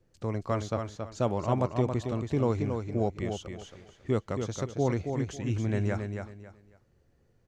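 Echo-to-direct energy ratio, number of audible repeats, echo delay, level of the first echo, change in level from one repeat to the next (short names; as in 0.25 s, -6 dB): -5.5 dB, 3, 0.274 s, -6.0 dB, -11.5 dB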